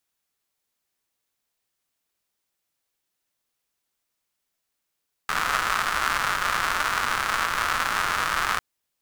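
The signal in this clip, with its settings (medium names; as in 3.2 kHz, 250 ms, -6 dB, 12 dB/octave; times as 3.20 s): rain from filtered ticks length 3.30 s, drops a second 230, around 1.3 kHz, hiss -14 dB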